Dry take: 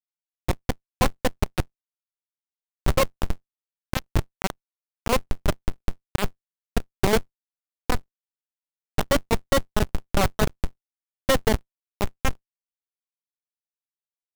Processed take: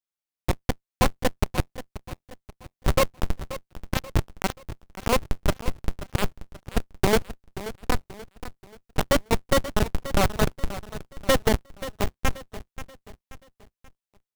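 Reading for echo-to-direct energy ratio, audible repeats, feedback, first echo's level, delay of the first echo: -13.0 dB, 3, 42%, -14.0 dB, 532 ms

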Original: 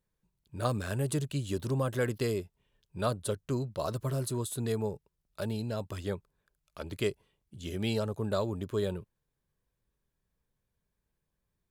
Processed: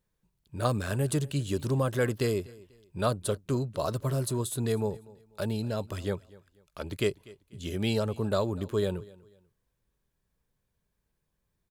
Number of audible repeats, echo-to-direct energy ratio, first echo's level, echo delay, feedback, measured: 2, -21.5 dB, -22.0 dB, 245 ms, 31%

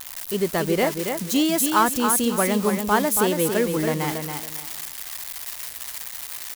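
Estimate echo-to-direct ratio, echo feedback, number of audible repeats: -5.5 dB, 26%, 3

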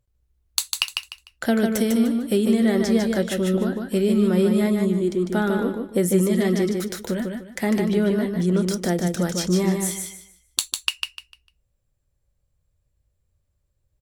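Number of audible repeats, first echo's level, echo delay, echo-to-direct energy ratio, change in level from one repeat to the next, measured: 3, -4.5 dB, 150 ms, -4.0 dB, -11.5 dB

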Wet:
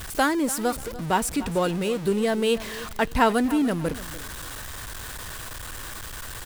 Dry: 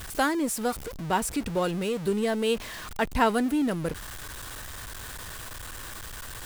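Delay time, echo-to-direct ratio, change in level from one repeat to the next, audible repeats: 292 ms, -16.0 dB, -11.0 dB, 2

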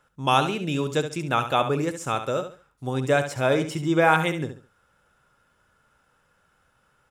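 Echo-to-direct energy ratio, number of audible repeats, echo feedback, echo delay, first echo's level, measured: -9.0 dB, 3, 28%, 69 ms, -9.5 dB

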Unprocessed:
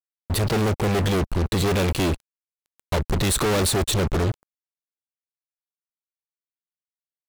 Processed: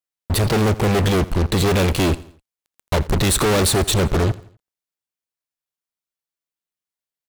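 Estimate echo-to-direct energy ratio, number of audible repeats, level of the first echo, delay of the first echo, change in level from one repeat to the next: -18.5 dB, 3, -19.5 dB, 84 ms, -7.5 dB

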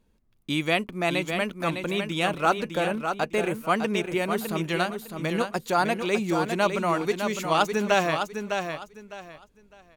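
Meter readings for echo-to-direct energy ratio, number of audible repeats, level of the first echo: -6.0 dB, 3, -6.5 dB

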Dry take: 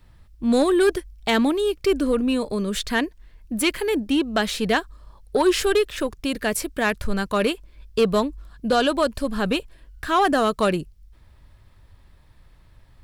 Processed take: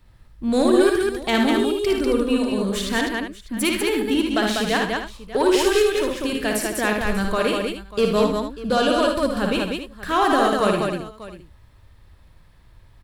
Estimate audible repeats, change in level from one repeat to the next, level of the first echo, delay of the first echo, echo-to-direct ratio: 6, no regular repeats, -4.5 dB, 57 ms, 0.5 dB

